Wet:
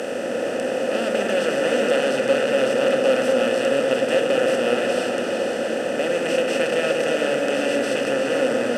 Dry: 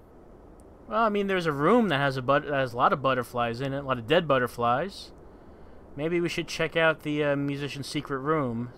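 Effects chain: spectral levelling over time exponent 0.2; vowel filter e; tilt EQ +4 dB/octave; in parallel at -8.5 dB: hysteresis with a dead band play -40.5 dBFS; on the sum: graphic EQ 125/250/500/1000/2000/4000/8000 Hz +11/+11/-8/+5/-11/-4/+12 dB; on a send: delay with an opening low-pass 117 ms, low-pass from 400 Hz, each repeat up 2 oct, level 0 dB; on the sum: trim +5 dB

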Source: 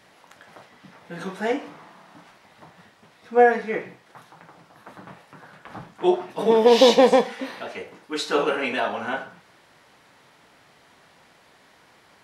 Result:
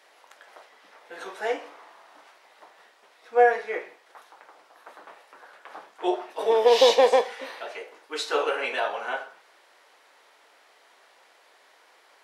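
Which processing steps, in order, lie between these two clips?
high-pass 400 Hz 24 dB/octave; trim -2 dB

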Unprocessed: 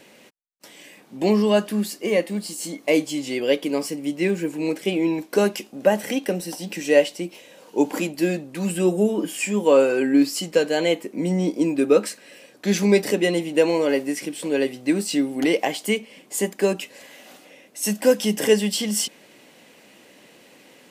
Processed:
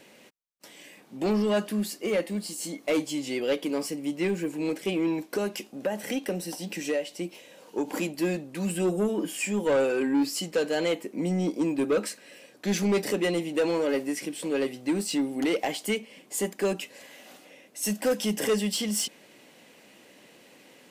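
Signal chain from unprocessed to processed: 5.19–7.88 s: compression 12:1, threshold -19 dBFS, peak gain reduction 10 dB; saturation -15.5 dBFS, distortion -12 dB; trim -3.5 dB

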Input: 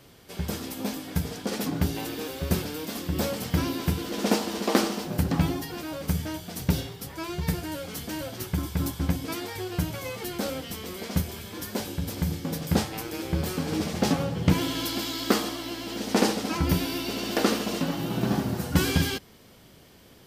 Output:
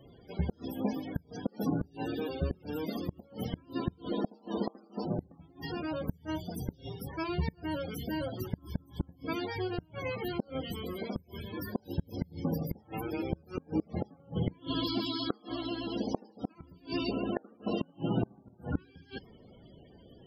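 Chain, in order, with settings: 17.11–17.67 s: low-pass 2.5 kHz 12 dB/octave; loudest bins only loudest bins 32; inverted gate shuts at -19 dBFS, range -31 dB

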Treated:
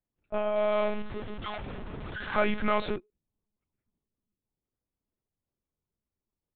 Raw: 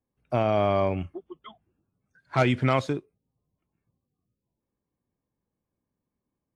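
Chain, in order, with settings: 0.57–2.96 s: jump at every zero crossing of -25.5 dBFS; monotone LPC vocoder at 8 kHz 210 Hz; dynamic bell 1.4 kHz, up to +4 dB, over -35 dBFS, Q 0.74; trim -6.5 dB

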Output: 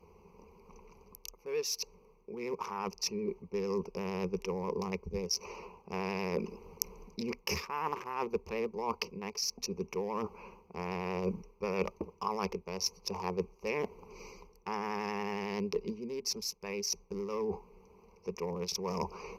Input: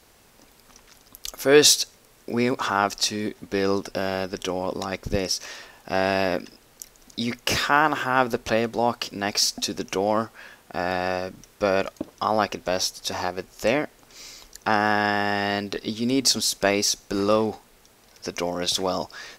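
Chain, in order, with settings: local Wiener filter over 25 samples; vibrato 11 Hz 51 cents; reverse; compression 6:1, threshold -36 dBFS, peak gain reduction 23.5 dB; reverse; rippled EQ curve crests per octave 0.81, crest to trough 17 dB; gain riding within 5 dB 0.5 s

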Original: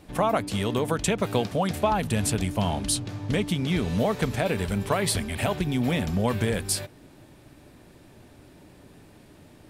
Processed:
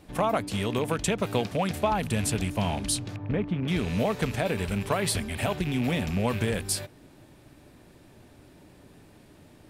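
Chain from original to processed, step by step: rattle on loud lows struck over -28 dBFS, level -26 dBFS; 3.16–3.68 s: low-pass 1.5 kHz 12 dB/octave; trim -2 dB

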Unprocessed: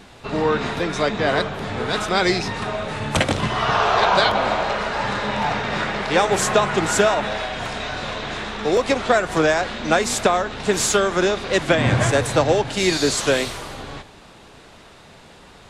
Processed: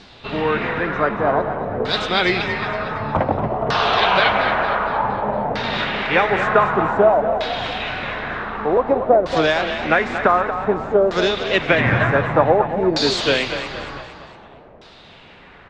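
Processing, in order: LFO low-pass saw down 0.54 Hz 530–4800 Hz; on a send: frequency-shifting echo 231 ms, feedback 49%, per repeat +32 Hz, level -9.5 dB; on the sum: trim -1 dB

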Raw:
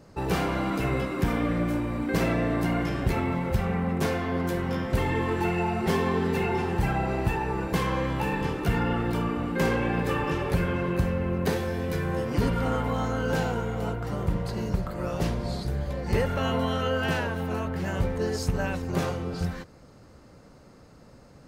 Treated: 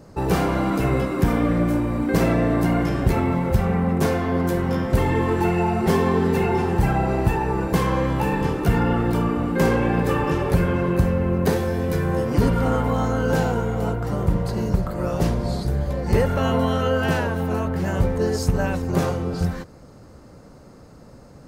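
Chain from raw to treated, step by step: peaking EQ 2.8 kHz -5.5 dB 1.9 oct; trim +6.5 dB

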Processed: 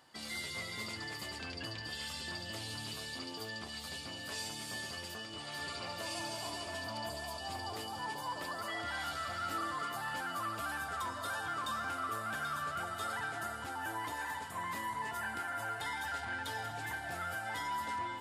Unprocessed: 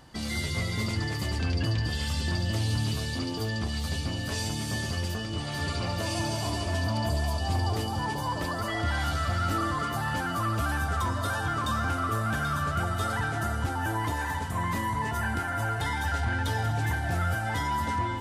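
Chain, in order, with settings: high-pass 670 Hz 6 dB/octave; band-stop 6 kHz, Q 11; trim -6 dB

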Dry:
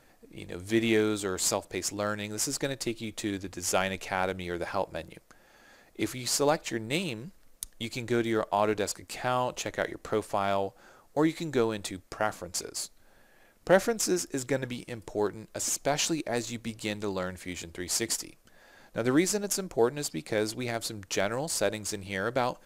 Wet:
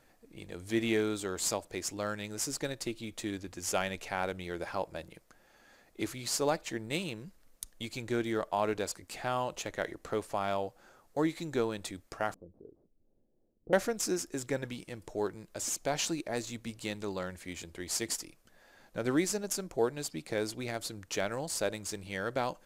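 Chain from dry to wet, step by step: 12.34–13.73 s: four-pole ladder low-pass 510 Hz, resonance 25%; trim -4.5 dB

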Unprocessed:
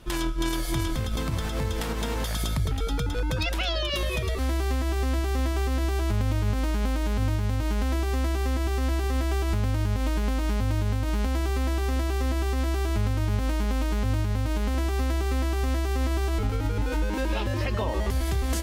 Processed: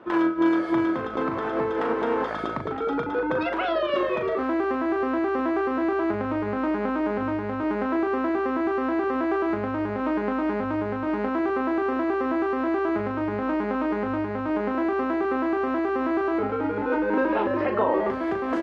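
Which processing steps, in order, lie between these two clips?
Chebyshev band-pass 320–1400 Hz, order 2; doubling 39 ms -7 dB; trim +8.5 dB

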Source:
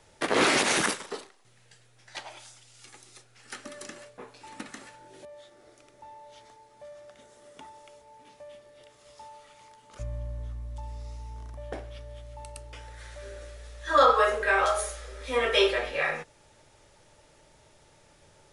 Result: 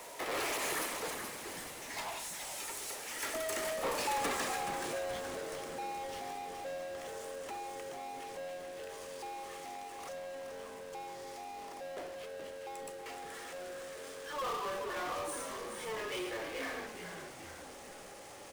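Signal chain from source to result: Doppler pass-by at 4.05 s, 29 m/s, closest 4 m; Bessel high-pass 450 Hz, order 6; peaking EQ 4 kHz -7 dB 1.6 oct; band-stop 1.5 kHz, Q 8.1; power-law waveshaper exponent 0.35; frequency-shifting echo 426 ms, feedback 51%, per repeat -93 Hz, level -7.5 dB; trim +6.5 dB

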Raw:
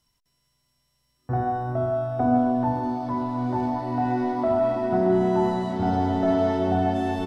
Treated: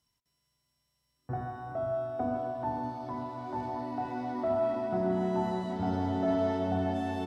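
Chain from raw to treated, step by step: high-pass 47 Hz; de-hum 123.5 Hz, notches 16; trim -6.5 dB

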